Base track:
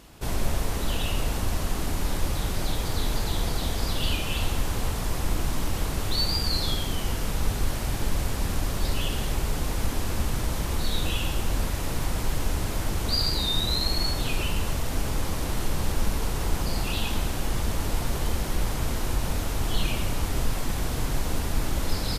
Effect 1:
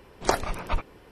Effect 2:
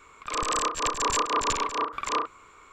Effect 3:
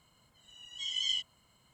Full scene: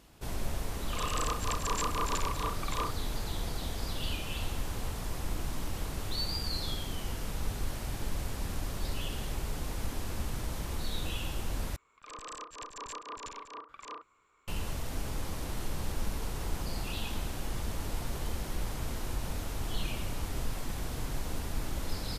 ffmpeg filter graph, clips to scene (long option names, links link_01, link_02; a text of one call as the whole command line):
ffmpeg -i bed.wav -i cue0.wav -i cue1.wav -filter_complex "[2:a]asplit=2[link_01][link_02];[0:a]volume=-8.5dB,asplit=2[link_03][link_04];[link_03]atrim=end=11.764[link_05];[link_02]atrim=end=2.72,asetpts=PTS-STARTPTS,volume=-17dB[link_06];[link_04]atrim=start=14.476[link_07];[link_01]atrim=end=2.72,asetpts=PTS-STARTPTS,volume=-8dB,afade=type=in:duration=0.004:curve=hsin,afade=type=out:start_time=2.716:duration=0.004:curve=hsin,adelay=650[link_08];[link_05][link_06]acrossfade=duration=0.004:curve1=hsin:curve2=hsin[link_09];[link_09][link_07]acrossfade=duration=0.004:curve1=hsin:curve2=hsin[link_10];[link_10][link_08]amix=inputs=2:normalize=0" out.wav